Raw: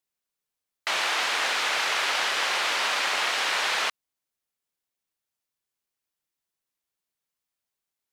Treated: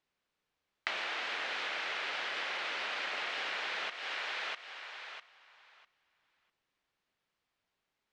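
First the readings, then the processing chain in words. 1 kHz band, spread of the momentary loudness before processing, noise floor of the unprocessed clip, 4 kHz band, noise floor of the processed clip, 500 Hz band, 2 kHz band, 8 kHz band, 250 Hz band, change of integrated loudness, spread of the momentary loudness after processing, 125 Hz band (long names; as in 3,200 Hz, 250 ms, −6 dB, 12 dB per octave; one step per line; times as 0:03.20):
−11.5 dB, 3 LU, below −85 dBFS, −11.5 dB, below −85 dBFS, −9.5 dB, −9.5 dB, −21.0 dB, −8.5 dB, −12.0 dB, 9 LU, can't be measured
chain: low-pass filter 3,300 Hz 12 dB per octave
on a send: feedback echo with a high-pass in the loop 650 ms, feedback 16%, high-pass 360 Hz, level −10 dB
on the sum: downward compressor 12 to 1, threshold −41 dBFS, peak gain reduction 17.5 dB
dynamic equaliser 1,000 Hz, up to −5 dB, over −59 dBFS, Q 1.6
level +8 dB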